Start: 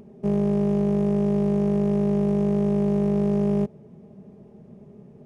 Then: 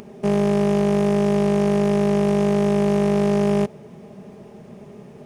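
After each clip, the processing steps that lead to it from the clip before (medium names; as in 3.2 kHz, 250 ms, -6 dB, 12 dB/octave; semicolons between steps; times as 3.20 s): tilt shelf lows -8 dB, about 670 Hz; in parallel at -1.5 dB: peak limiter -24 dBFS, peak gain reduction 8 dB; on the sum: trim +5.5 dB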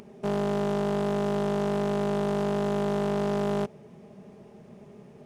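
loudspeaker Doppler distortion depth 0.41 ms; trim -7.5 dB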